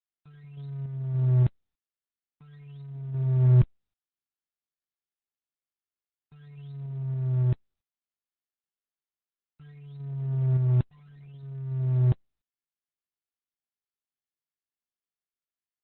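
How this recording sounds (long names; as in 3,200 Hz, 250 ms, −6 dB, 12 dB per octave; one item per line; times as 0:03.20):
a quantiser's noise floor 10 bits, dither none
sample-and-hold tremolo
Opus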